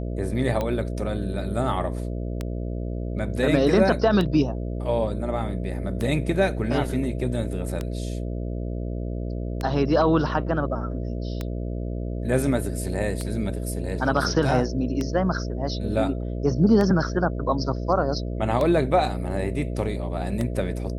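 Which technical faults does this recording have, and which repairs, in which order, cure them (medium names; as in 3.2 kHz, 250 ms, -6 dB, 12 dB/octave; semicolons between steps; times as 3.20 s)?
buzz 60 Hz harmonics 11 -29 dBFS
tick 33 1/3 rpm -14 dBFS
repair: de-click; de-hum 60 Hz, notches 11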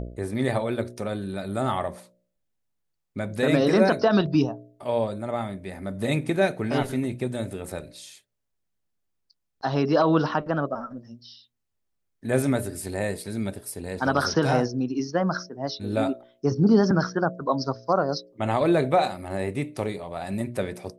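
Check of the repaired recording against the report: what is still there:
nothing left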